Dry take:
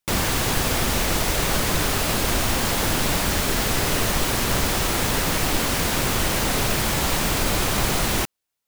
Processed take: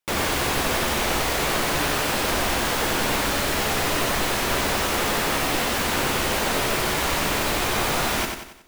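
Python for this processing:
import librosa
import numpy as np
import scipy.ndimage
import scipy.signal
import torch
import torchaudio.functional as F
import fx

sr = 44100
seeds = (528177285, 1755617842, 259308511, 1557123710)

p1 = fx.bass_treble(x, sr, bass_db=-8, treble_db=-5)
p2 = fx.doubler(p1, sr, ms=14.0, db=-10.5)
y = p2 + fx.echo_feedback(p2, sr, ms=92, feedback_pct=45, wet_db=-5.0, dry=0)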